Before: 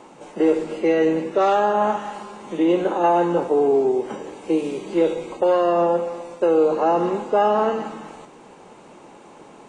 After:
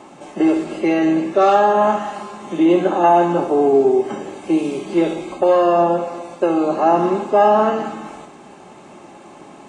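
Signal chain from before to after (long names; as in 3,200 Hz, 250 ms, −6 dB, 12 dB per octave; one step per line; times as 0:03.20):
notch comb filter 480 Hz
flutter between parallel walls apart 11.2 metres, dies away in 0.36 s
level +5 dB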